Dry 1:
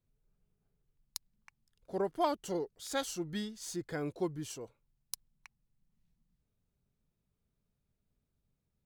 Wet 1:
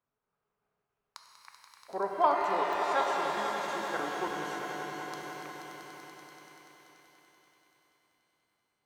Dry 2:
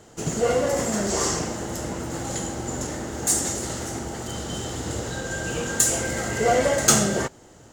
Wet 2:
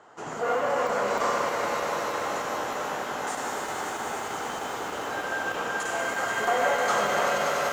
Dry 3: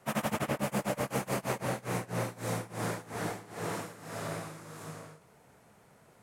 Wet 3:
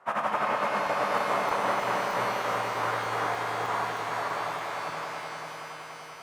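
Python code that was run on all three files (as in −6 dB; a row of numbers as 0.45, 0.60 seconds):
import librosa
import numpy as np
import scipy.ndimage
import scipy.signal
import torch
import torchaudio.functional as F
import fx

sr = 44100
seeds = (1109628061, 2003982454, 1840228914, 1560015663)

y = fx.echo_swell(x, sr, ms=96, loudest=5, wet_db=-11.0)
y = 10.0 ** (-18.0 / 20.0) * np.tanh(y / 10.0 ** (-18.0 / 20.0))
y = fx.bandpass_q(y, sr, hz=1100.0, q=1.9)
y = fx.buffer_crackle(y, sr, first_s=0.87, period_s=0.31, block=1024, kind='zero')
y = fx.rev_shimmer(y, sr, seeds[0], rt60_s=3.3, semitones=12, shimmer_db=-8, drr_db=2.0)
y = librosa.util.normalize(y) * 10.0 ** (-12 / 20.0)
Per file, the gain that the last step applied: +10.5, +6.0, +10.5 decibels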